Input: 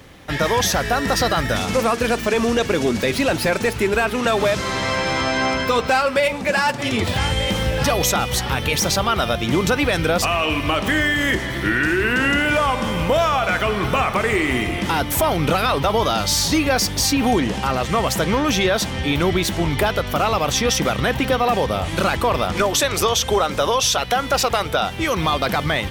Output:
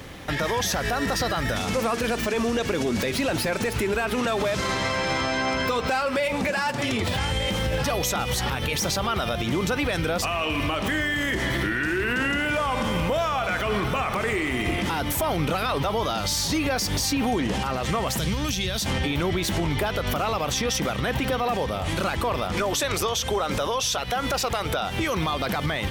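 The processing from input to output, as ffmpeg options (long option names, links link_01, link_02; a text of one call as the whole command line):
ffmpeg -i in.wav -filter_complex "[0:a]asettb=1/sr,asplit=3[link_01][link_02][link_03];[link_01]atrim=end=18.174[link_04];[link_02]atrim=start=18.17:end=18.86,asetpts=PTS-STARTPTS,afade=type=in:duration=0.004:curve=qsin,afade=type=out:start_time=0.686:duration=0.004:curve=qsin,acrossover=split=170|3000[link_05][link_06][link_07];[link_06]acompressor=threshold=-34dB:ratio=4:attack=3.2:release=140:knee=2.83:detection=peak[link_08];[link_05][link_08][link_07]amix=inputs=3:normalize=0[link_09];[link_03]atrim=start=18.856[link_10];[link_04][link_09]acrossfade=duration=0.004:curve1=hsin:curve2=qsin[link_11];[link_11][link_10]acrossfade=duration=0.004:curve1=qsin:curve2=hsin,acompressor=threshold=-19dB:ratio=6,alimiter=limit=-20.5dB:level=0:latency=1:release=89,volume=4dB" out.wav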